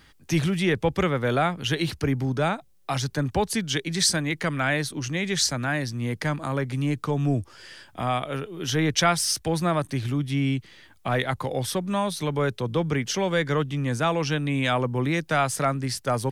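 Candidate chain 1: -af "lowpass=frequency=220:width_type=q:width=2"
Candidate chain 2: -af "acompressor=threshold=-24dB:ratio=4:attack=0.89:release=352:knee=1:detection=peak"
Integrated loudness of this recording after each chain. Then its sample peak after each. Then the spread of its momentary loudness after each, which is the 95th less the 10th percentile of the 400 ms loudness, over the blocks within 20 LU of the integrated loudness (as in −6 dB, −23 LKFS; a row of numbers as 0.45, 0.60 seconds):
−26.0, −30.5 LKFS; −11.0, −17.5 dBFS; 7, 4 LU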